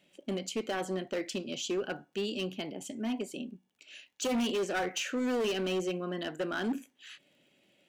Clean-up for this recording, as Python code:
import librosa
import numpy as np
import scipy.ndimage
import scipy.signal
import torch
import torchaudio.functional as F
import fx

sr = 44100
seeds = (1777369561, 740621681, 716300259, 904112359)

y = fx.fix_declip(x, sr, threshold_db=-27.0)
y = fx.fix_declick_ar(y, sr, threshold=6.5)